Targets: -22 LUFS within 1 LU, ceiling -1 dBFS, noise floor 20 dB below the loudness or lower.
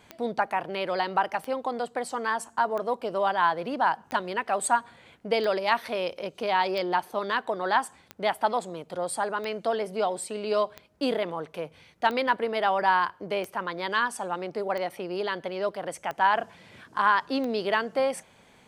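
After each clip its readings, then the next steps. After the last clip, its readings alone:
clicks found 14; loudness -28.0 LUFS; peak level -8.5 dBFS; loudness target -22.0 LUFS
-> de-click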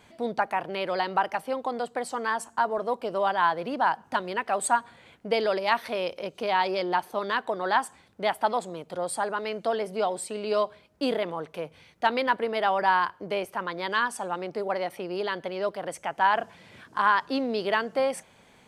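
clicks found 0; loudness -28.0 LUFS; peak level -8.5 dBFS; loudness target -22.0 LUFS
-> trim +6 dB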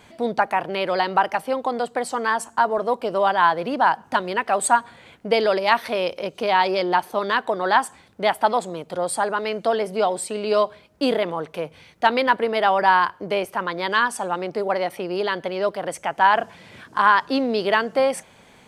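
loudness -22.0 LUFS; peak level -2.5 dBFS; noise floor -52 dBFS

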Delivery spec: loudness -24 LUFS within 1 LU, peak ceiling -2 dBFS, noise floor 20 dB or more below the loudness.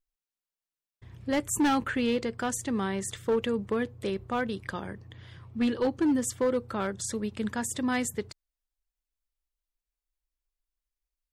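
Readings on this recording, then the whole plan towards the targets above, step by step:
clipped samples 0.9%; clipping level -20.5 dBFS; loudness -29.5 LUFS; peak level -20.5 dBFS; loudness target -24.0 LUFS
-> clip repair -20.5 dBFS; trim +5.5 dB

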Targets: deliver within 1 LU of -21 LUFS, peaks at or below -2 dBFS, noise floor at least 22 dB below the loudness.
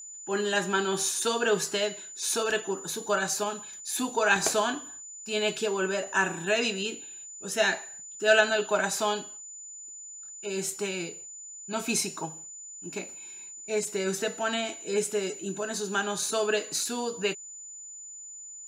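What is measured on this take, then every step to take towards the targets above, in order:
steady tone 7 kHz; tone level -41 dBFS; loudness -28.5 LUFS; peak level -8.0 dBFS; loudness target -21.0 LUFS
-> band-stop 7 kHz, Q 30; trim +7.5 dB; peak limiter -2 dBFS

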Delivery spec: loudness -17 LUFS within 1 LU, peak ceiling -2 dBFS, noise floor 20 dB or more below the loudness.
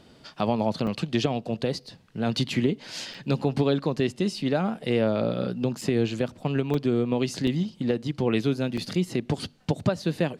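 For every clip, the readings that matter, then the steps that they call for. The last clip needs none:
dropouts 6; longest dropout 4.7 ms; loudness -27.0 LUFS; peak level -9.5 dBFS; loudness target -17.0 LUFS
-> interpolate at 0.87/3.14/5.81/6.74/7.47/8.77 s, 4.7 ms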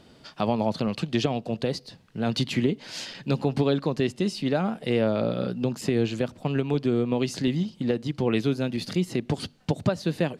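dropouts 0; loudness -27.0 LUFS; peak level -9.5 dBFS; loudness target -17.0 LUFS
-> trim +10 dB; peak limiter -2 dBFS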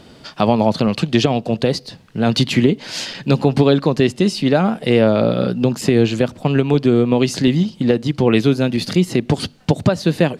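loudness -17.0 LUFS; peak level -2.0 dBFS; noise floor -45 dBFS

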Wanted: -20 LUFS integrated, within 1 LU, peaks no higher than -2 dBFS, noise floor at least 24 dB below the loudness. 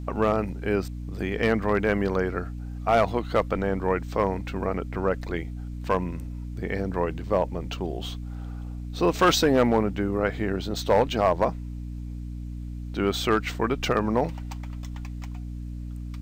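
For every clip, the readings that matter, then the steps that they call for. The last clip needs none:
clipped samples 0.3%; clipping level -12.5 dBFS; hum 60 Hz; highest harmonic 300 Hz; hum level -32 dBFS; loudness -26.0 LUFS; peak level -12.5 dBFS; loudness target -20.0 LUFS
-> clip repair -12.5 dBFS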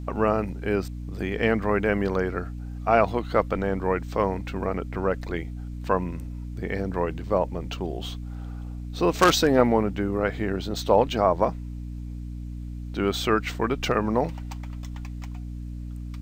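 clipped samples 0.0%; hum 60 Hz; highest harmonic 300 Hz; hum level -32 dBFS
-> hum notches 60/120/180/240/300 Hz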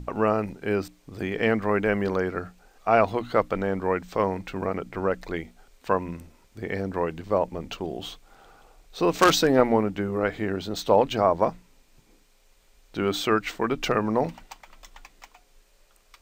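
hum not found; loudness -25.5 LUFS; peak level -3.0 dBFS; loudness target -20.0 LUFS
-> trim +5.5 dB; peak limiter -2 dBFS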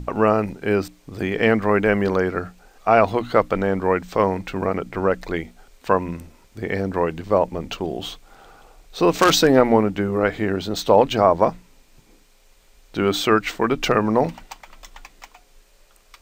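loudness -20.5 LUFS; peak level -2.0 dBFS; noise floor -55 dBFS

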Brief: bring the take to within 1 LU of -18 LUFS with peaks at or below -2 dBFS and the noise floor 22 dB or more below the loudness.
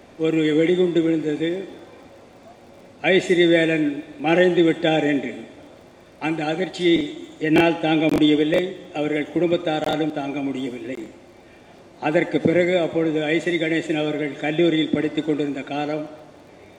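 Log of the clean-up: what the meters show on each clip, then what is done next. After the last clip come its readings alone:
tick rate 32 per s; loudness -21.0 LUFS; peak level -3.5 dBFS; loudness target -18.0 LUFS
-> de-click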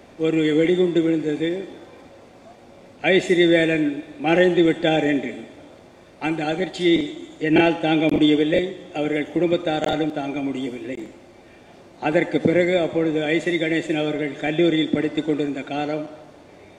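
tick rate 0.48 per s; loudness -21.0 LUFS; peak level -3.5 dBFS; loudness target -18.0 LUFS
-> trim +3 dB; peak limiter -2 dBFS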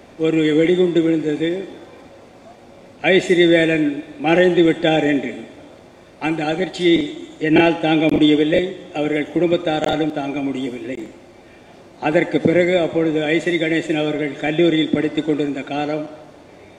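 loudness -18.0 LUFS; peak level -2.0 dBFS; noise floor -45 dBFS

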